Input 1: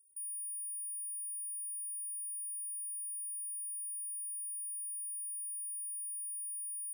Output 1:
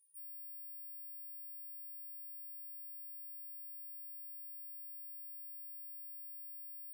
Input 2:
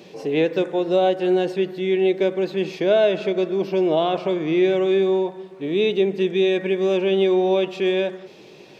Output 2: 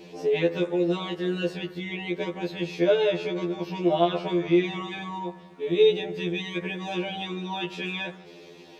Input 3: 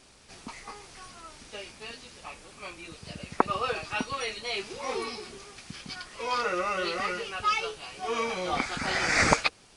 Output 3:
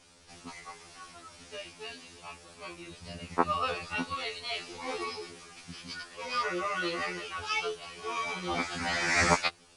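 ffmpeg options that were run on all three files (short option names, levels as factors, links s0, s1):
-af "afftfilt=real='re*2*eq(mod(b,4),0)':imag='im*2*eq(mod(b,4),0)':win_size=2048:overlap=0.75"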